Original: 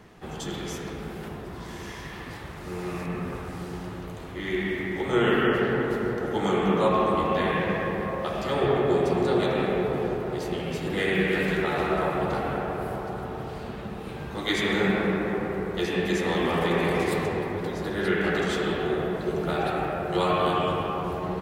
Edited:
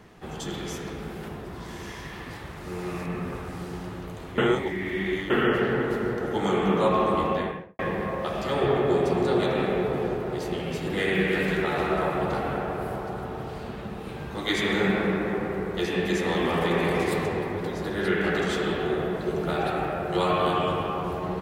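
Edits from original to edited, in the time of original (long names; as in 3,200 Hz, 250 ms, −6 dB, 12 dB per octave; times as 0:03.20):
0:04.38–0:05.30: reverse
0:07.23–0:07.79: fade out and dull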